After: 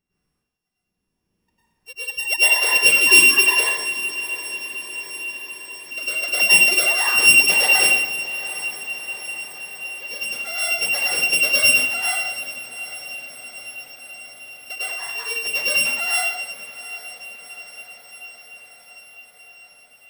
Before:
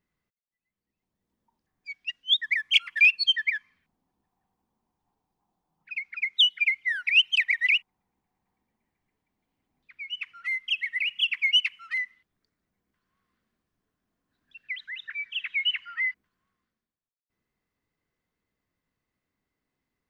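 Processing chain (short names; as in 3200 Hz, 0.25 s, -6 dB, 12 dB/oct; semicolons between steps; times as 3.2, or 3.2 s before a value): sample sorter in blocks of 16 samples; 6.71–7.14 whine 1200 Hz -46 dBFS; on a send: diffused feedback echo 0.786 s, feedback 67%, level -14.5 dB; on the sum: plate-style reverb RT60 0.96 s, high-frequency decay 0.85×, pre-delay 90 ms, DRR -10 dB; gain -1.5 dB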